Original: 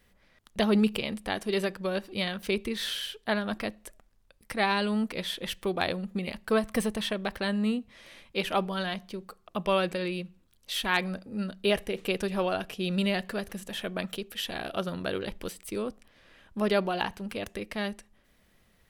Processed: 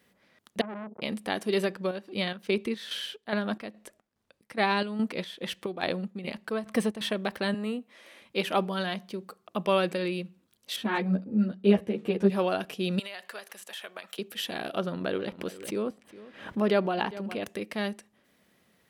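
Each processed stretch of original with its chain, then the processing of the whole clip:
0.61–1.02 compressor 8:1, threshold -31 dBFS + brick-wall FIR low-pass 1100 Hz + core saturation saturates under 1400 Hz
1.66–7.01 high shelf 9800 Hz -9 dB + chopper 2.4 Hz, depth 60%, duty 60%
7.54–8.22 HPF 320 Hz + dynamic EQ 4700 Hz, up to -7 dB, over -58 dBFS, Q 1
10.76–12.3 HPF 91 Hz + tilt -3.5 dB/oct + ensemble effect
12.99–14.19 HPF 820 Hz + compressor 10:1, threshold -35 dBFS
14.78–17.42 high shelf 5200 Hz -11 dB + echo 0.408 s -17.5 dB + backwards sustainer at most 95 dB/s
whole clip: HPF 210 Hz 12 dB/oct; low shelf 290 Hz +7 dB

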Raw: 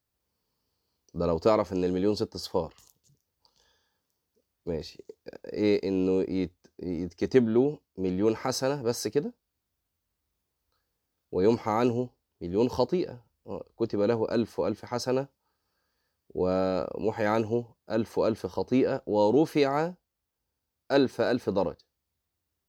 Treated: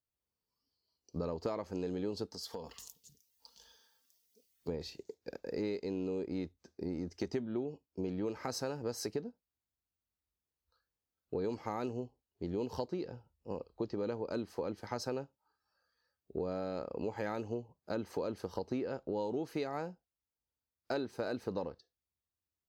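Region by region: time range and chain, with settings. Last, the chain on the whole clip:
2.31–4.68 high shelf 2200 Hz +8.5 dB + comb 4.4 ms, depth 43% + compressor, threshold -39 dBFS
whole clip: compressor 6:1, threshold -33 dBFS; spectral noise reduction 12 dB; gain -1 dB

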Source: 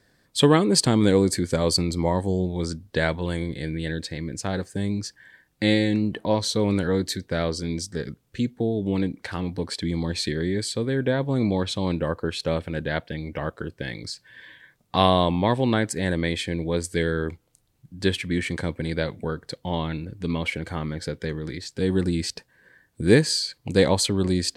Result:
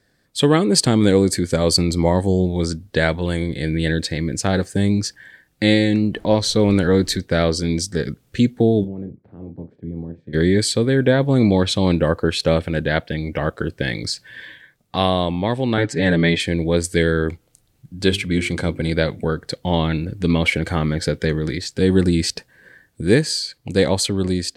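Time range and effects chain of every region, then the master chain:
6.15–7.2 high shelf 8600 Hz -4.5 dB + added noise brown -48 dBFS
8.83–10.33 spectral limiter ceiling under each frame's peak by 18 dB + ladder band-pass 160 Hz, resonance 30% + doubler 36 ms -10.5 dB
15.77–16.4 LPF 4700 Hz + comb 6.9 ms, depth 92%
18.02–18.93 Butterworth band-stop 1800 Hz, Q 7.7 + notches 50/100/150/200/250/300/350/400 Hz
whole clip: bell 990 Hz -5 dB 0.28 oct; AGC gain up to 11.5 dB; gain -1 dB

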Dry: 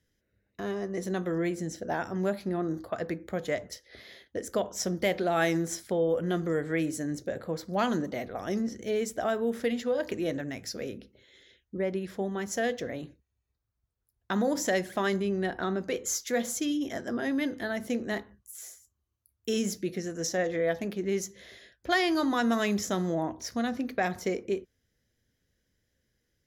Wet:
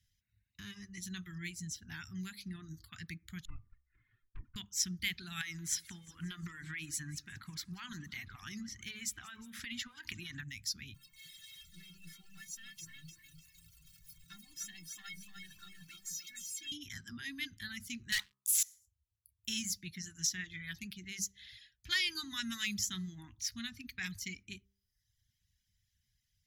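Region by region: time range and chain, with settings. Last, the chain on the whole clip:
3.45–4.56 minimum comb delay 2.8 ms + LPF 1300 Hz 24 dB/oct + envelope flanger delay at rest 9.9 ms, full sweep at -31.5 dBFS
5.41–10.43 bell 990 Hz +13 dB 2 oct + compressor 12:1, threshold -25 dBFS + feedback echo 0.178 s, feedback 52%, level -15 dB
10.94–16.72 zero-crossing step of -36 dBFS + metallic resonator 160 Hz, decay 0.33 s, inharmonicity 0.03 + lo-fi delay 0.3 s, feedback 35%, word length 11-bit, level -4 dB
18.12–18.63 HPF 740 Hz + sample leveller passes 5
whole clip: de-hum 65.83 Hz, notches 20; reverb removal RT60 0.8 s; Chebyshev band-stop 110–2800 Hz, order 2; gain +1.5 dB

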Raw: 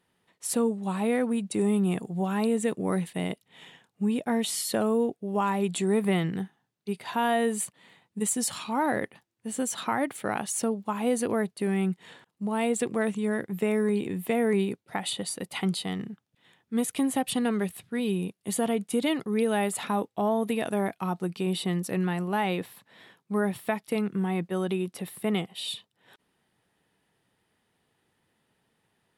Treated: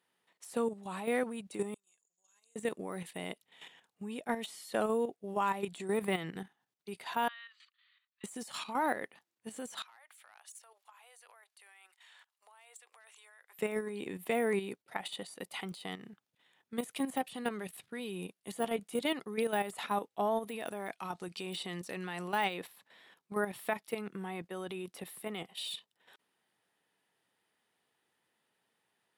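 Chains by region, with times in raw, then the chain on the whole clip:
1.74–2.56 band-pass 6700 Hz, Q 17 + comb 1.9 ms, depth 35%
7.28–8.24 Chebyshev band-pass 1200–4400 Hz, order 4 + bell 1900 Hz -9 dB 2.4 oct
9.82–13.59 Bessel high-pass 1100 Hz, order 6 + hard clip -25.5 dBFS + compressor 8:1, threshold -48 dBFS
20.8–22.54 LPF 8600 Hz + high shelf 2400 Hz +8 dB
whole clip: de-esser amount 85%; HPF 540 Hz 6 dB/oct; level quantiser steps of 10 dB

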